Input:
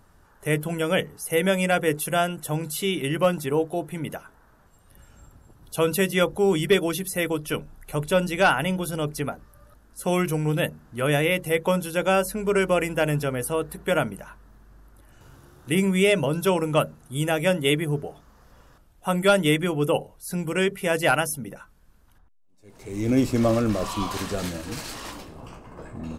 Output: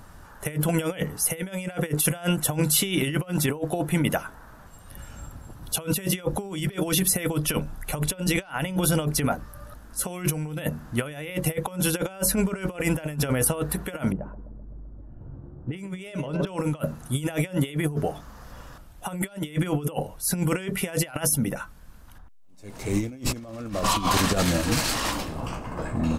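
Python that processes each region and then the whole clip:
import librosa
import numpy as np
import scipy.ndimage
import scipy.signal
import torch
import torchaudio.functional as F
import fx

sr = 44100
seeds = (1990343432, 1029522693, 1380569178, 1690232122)

y = fx.chain(x, sr, fx.env_lowpass(base_hz=360.0, full_db=-16.0),
    fx.echo_banded(ms=128, feedback_pct=69, hz=410.0, wet_db=-12.5), at=(14.12, 16.47))
y = fx.peak_eq(y, sr, hz=400.0, db=-5.0, octaves=0.46)
y = fx.over_compress(y, sr, threshold_db=-30.0, ratio=-0.5)
y = y * 10.0 ** (4.5 / 20.0)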